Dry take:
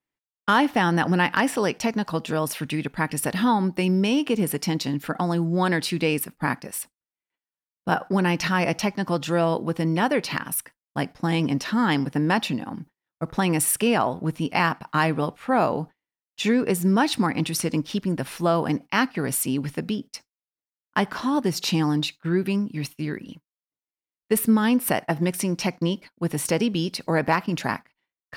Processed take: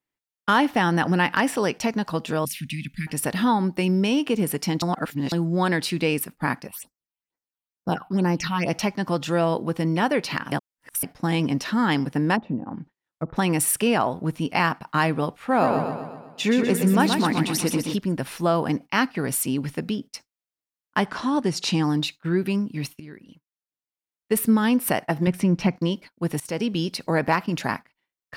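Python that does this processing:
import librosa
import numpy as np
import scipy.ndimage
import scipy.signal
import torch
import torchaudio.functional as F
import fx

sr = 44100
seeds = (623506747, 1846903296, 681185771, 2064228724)

y = fx.cheby1_bandstop(x, sr, low_hz=220.0, high_hz=2200.0, order=3, at=(2.45, 3.07))
y = fx.phaser_stages(y, sr, stages=6, low_hz=430.0, high_hz=3300.0, hz=2.2, feedback_pct=25, at=(6.67, 8.69), fade=0.02)
y = fx.env_lowpass_down(y, sr, base_hz=650.0, full_db=-24.0, at=(12.35, 13.35), fade=0.02)
y = fx.echo_feedback(y, sr, ms=125, feedback_pct=53, wet_db=-5.5, at=(15.34, 17.96))
y = fx.lowpass(y, sr, hz=10000.0, slope=24, at=(21.05, 21.84))
y = fx.bass_treble(y, sr, bass_db=8, treble_db=-12, at=(25.27, 25.76))
y = fx.edit(y, sr, fx.reverse_span(start_s=4.82, length_s=0.5),
    fx.reverse_span(start_s=10.52, length_s=0.51),
    fx.fade_in_from(start_s=23.0, length_s=1.48, floor_db=-14.5),
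    fx.fade_in_from(start_s=26.4, length_s=0.46, curve='qsin', floor_db=-18.0), tone=tone)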